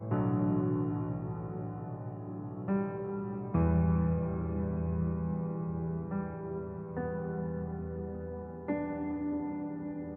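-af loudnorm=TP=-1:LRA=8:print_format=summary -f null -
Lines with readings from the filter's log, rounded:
Input Integrated:    -35.1 LUFS
Input True Peak:     -17.0 dBTP
Input LRA:             4.9 LU
Input Threshold:     -45.1 LUFS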